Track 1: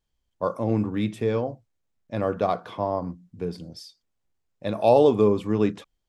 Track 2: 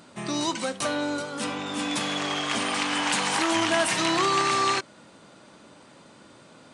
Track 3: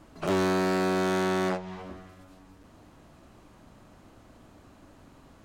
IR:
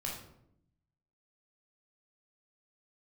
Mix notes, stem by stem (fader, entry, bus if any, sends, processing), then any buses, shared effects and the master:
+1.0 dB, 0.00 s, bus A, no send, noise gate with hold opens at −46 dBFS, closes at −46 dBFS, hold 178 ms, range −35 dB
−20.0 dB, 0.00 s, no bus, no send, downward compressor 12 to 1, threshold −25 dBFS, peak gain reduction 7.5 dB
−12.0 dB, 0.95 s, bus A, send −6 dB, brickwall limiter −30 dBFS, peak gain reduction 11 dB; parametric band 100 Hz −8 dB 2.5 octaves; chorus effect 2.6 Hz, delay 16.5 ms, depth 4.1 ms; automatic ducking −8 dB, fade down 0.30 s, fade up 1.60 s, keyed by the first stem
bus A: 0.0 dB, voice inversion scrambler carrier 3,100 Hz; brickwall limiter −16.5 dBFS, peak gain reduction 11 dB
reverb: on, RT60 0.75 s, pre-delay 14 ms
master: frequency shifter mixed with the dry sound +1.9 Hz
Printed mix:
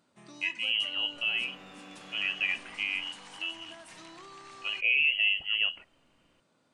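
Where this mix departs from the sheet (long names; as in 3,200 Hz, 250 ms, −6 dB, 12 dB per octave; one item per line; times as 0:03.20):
stem 1 +1.0 dB → −6.5 dB
stem 3: missing chorus effect 2.6 Hz, delay 16.5 ms, depth 4.1 ms
master: missing frequency shifter mixed with the dry sound +1.9 Hz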